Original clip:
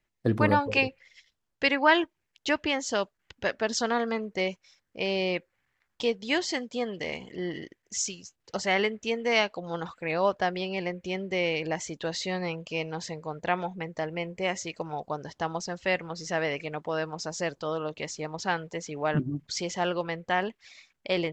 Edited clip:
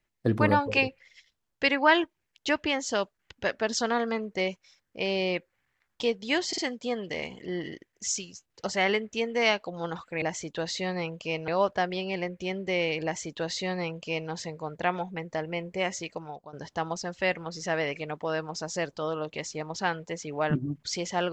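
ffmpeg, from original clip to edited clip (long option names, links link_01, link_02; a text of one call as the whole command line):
ffmpeg -i in.wav -filter_complex "[0:a]asplit=6[link_01][link_02][link_03][link_04][link_05][link_06];[link_01]atrim=end=6.532[link_07];[link_02]atrim=start=6.478:end=6.532[link_08];[link_03]atrim=start=6.478:end=10.122[link_09];[link_04]atrim=start=11.678:end=12.942[link_10];[link_05]atrim=start=10.118:end=15.17,asetpts=PTS-STARTPTS,afade=type=out:start_time=4.542:duration=0.51:silence=0.133352[link_11];[link_06]atrim=start=15.17,asetpts=PTS-STARTPTS,afade=type=in:duration=0.004:curve=hsin:silence=0.133352[link_12];[link_07][link_08]acrossfade=duration=0.004:curve1=hsin:curve2=hsin[link_13];[link_13][link_09]acrossfade=duration=0.004:curve1=hsin:curve2=hsin[link_14];[link_14][link_10]acrossfade=duration=0.004:curve1=hsin:curve2=hsin[link_15];[link_11][link_12]concat=n=2:v=0:a=1[link_16];[link_15][link_16]acrossfade=duration=0.004:curve1=hsin:curve2=hsin" out.wav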